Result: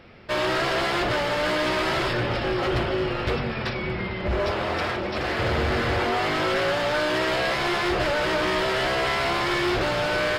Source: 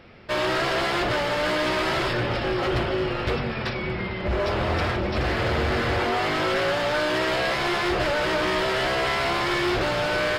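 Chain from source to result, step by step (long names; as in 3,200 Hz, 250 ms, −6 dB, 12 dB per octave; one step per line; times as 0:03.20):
0:04.51–0:05.39: low-shelf EQ 150 Hz −12 dB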